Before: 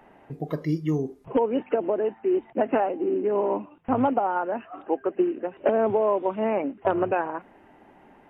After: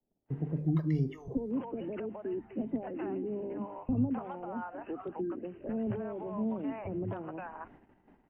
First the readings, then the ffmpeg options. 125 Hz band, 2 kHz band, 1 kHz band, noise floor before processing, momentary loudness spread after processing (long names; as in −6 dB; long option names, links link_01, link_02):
0.0 dB, −14.0 dB, −16.5 dB, −55 dBFS, 9 LU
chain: -filter_complex "[0:a]acrossover=split=260[link_01][link_02];[link_02]acompressor=threshold=-31dB:ratio=6[link_03];[link_01][link_03]amix=inputs=2:normalize=0,aemphasis=mode=reproduction:type=cd,acrossover=split=650[link_04][link_05];[link_05]adelay=260[link_06];[link_04][link_06]amix=inputs=2:normalize=0,agate=range=-28dB:threshold=-52dB:ratio=16:detection=peak,bandreject=frequency=50:width_type=h:width=6,bandreject=frequency=100:width_type=h:width=6,bandreject=frequency=150:width_type=h:width=6,bandreject=frequency=200:width_type=h:width=6,acrossover=split=270|950[link_07][link_08][link_09];[link_08]alimiter=level_in=9.5dB:limit=-24dB:level=0:latency=1,volume=-9.5dB[link_10];[link_07][link_10][link_09]amix=inputs=3:normalize=0,lowshelf=frequency=210:gain=11,volume=-4.5dB"